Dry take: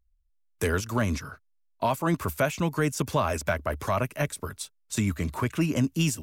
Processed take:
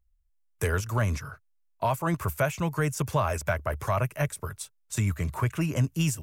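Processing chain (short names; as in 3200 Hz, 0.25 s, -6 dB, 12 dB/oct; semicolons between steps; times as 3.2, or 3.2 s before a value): graphic EQ 125/250/4000 Hz +6/-10/-6 dB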